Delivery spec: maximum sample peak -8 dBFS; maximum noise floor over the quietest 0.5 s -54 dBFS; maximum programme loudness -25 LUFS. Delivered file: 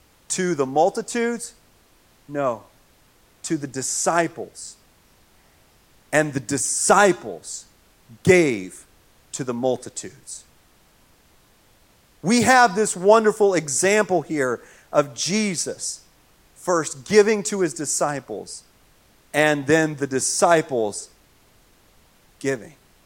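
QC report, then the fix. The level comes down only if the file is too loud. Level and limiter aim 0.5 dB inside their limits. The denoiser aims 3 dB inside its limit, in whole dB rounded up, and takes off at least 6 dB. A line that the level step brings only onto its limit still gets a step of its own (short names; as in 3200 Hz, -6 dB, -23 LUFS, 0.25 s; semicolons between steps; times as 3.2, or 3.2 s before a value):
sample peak -2.5 dBFS: fail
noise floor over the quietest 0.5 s -57 dBFS: OK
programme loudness -20.5 LUFS: fail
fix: gain -5 dB; limiter -8.5 dBFS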